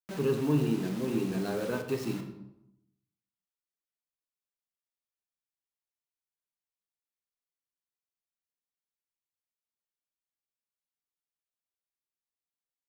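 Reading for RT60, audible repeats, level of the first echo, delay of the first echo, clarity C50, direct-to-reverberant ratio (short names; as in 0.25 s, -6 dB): 0.85 s, none, none, none, 8.0 dB, 5.0 dB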